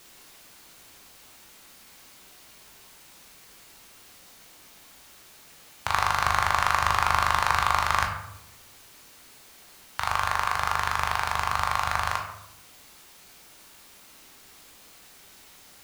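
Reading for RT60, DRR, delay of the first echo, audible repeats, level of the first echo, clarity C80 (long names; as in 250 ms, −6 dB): 0.80 s, 1.0 dB, no echo audible, no echo audible, no echo audible, 8.5 dB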